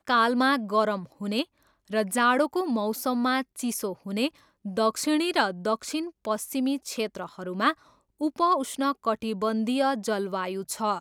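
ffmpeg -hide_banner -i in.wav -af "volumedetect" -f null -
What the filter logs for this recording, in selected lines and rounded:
mean_volume: -27.0 dB
max_volume: -9.5 dB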